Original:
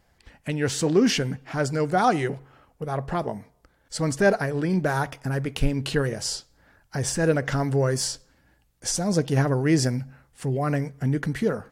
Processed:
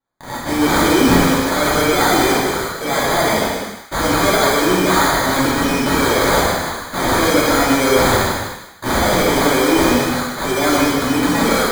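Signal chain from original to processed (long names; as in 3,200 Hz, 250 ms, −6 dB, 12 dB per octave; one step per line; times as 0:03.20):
noise gate with hold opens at −51 dBFS
high-pass filter 260 Hz 24 dB per octave
high-shelf EQ 2,200 Hz +10.5 dB
brickwall limiter −15 dBFS, peak gain reduction 10 dB
transient designer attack −7 dB, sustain +5 dB
in parallel at −10 dB: fuzz pedal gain 55 dB, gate −51 dBFS
on the sum: decimation without filtering 16×
on a send: delay with a high-pass on its return 153 ms, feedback 32%, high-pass 1,400 Hz, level −8 dB
on the sum: reverb whose tail is shaped and stops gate 410 ms falling, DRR −7 dB
level −2 dB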